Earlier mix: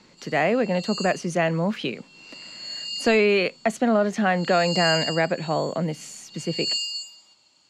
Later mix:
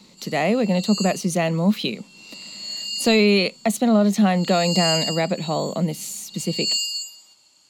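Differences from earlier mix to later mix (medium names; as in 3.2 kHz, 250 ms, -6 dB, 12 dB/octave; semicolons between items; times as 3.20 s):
speech: add graphic EQ with 31 bands 200 Hz +10 dB, 1.6 kHz -11 dB, 4 kHz +10 dB; master: remove distance through air 85 m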